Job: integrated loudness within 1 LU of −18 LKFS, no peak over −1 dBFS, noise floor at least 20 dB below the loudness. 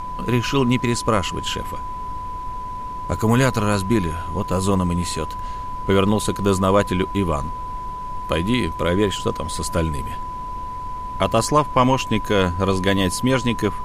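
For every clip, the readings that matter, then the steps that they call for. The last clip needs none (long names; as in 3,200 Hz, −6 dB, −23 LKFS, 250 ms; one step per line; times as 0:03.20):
interfering tone 1,000 Hz; level of the tone −28 dBFS; background noise floor −30 dBFS; target noise floor −42 dBFS; integrated loudness −21.5 LKFS; sample peak −4.0 dBFS; target loudness −18.0 LKFS
→ notch filter 1,000 Hz, Q 30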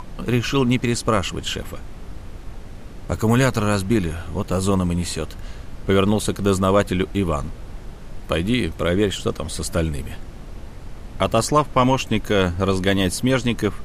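interfering tone none found; background noise floor −37 dBFS; target noise floor −41 dBFS
→ noise reduction from a noise print 6 dB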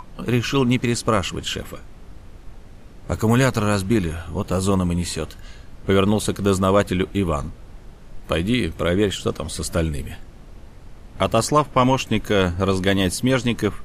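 background noise floor −42 dBFS; integrated loudness −21.0 LKFS; sample peak −4.5 dBFS; target loudness −18.0 LKFS
→ level +3 dB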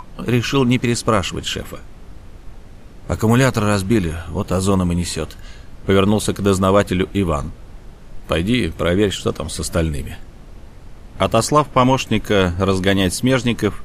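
integrated loudness −18.0 LKFS; sample peak −1.5 dBFS; background noise floor −39 dBFS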